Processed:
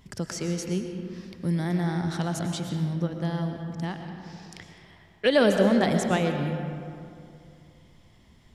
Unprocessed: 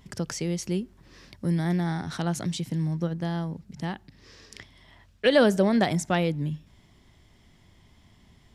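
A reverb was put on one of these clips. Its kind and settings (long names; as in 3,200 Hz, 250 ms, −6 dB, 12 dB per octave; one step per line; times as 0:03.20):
comb and all-pass reverb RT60 2.5 s, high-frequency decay 0.5×, pre-delay 75 ms, DRR 4.5 dB
level −1 dB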